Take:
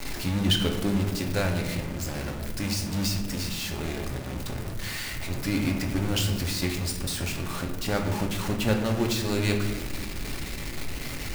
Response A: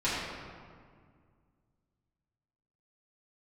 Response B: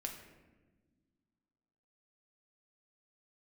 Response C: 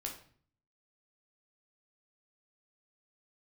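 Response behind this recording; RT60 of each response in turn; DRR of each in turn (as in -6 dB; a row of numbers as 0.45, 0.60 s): B; 2.0 s, not exponential, 0.50 s; -12.5, 1.5, 0.0 dB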